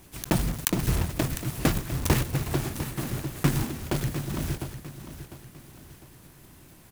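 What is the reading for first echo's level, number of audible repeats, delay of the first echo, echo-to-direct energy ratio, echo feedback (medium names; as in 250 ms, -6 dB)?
-12.0 dB, 3, 702 ms, -11.5 dB, 40%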